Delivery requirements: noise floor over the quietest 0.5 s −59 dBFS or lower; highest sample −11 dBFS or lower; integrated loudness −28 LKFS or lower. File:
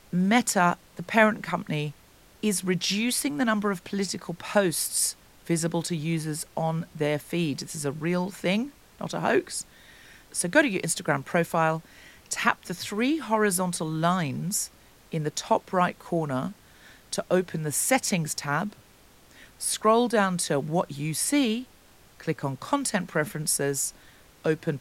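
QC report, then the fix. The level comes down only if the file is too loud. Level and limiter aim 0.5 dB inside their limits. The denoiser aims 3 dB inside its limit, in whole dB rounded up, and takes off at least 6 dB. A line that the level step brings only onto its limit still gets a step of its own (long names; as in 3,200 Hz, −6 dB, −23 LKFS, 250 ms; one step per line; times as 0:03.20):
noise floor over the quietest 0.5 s −55 dBFS: out of spec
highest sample −5.5 dBFS: out of spec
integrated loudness −26.5 LKFS: out of spec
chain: broadband denoise 6 dB, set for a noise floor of −55 dBFS
level −2 dB
brickwall limiter −11.5 dBFS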